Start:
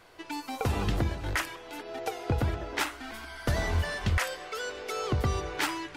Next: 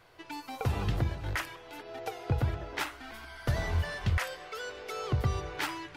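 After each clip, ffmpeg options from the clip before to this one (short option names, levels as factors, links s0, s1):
-af "equalizer=f=125:t=o:w=1:g=6,equalizer=f=250:t=o:w=1:g=-4,equalizer=f=8000:t=o:w=1:g=-4,volume=0.668"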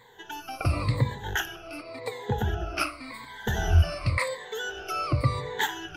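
-af "afftfilt=real='re*pow(10,21/40*sin(2*PI*(1*log(max(b,1)*sr/1024/100)/log(2)-(-0.91)*(pts-256)/sr)))':imag='im*pow(10,21/40*sin(2*PI*(1*log(max(b,1)*sr/1024/100)/log(2)-(-0.91)*(pts-256)/sr)))':win_size=1024:overlap=0.75,volume=1.12"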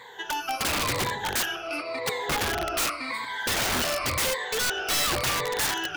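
-filter_complex "[0:a]asplit=2[s0][s1];[s1]highpass=f=720:p=1,volume=14.1,asoftclip=type=tanh:threshold=0.355[s2];[s0][s2]amix=inputs=2:normalize=0,lowpass=f=4800:p=1,volume=0.501,aeval=exprs='(mod(6.31*val(0)+1,2)-1)/6.31':c=same,volume=0.531"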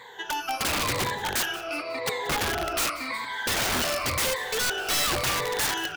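-af "aecho=1:1:182|364|546:0.112|0.046|0.0189"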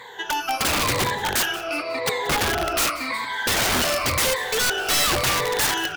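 -af "volume=1.78" -ar 44100 -c:a libvorbis -b:a 96k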